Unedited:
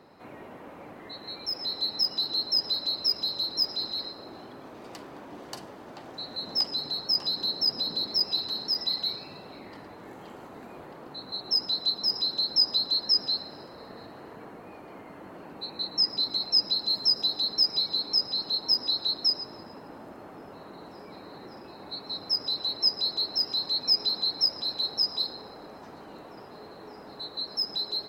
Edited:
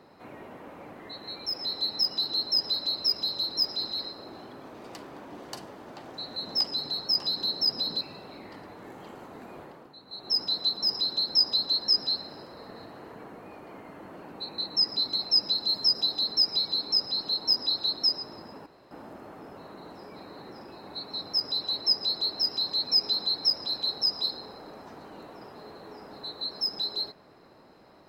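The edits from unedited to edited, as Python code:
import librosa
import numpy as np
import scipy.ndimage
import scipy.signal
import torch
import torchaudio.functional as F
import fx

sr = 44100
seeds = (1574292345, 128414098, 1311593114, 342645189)

y = fx.edit(x, sr, fx.cut(start_s=8.01, length_s=1.21),
    fx.fade_down_up(start_s=10.82, length_s=0.78, db=-10.0, fade_s=0.32),
    fx.insert_room_tone(at_s=19.87, length_s=0.25), tone=tone)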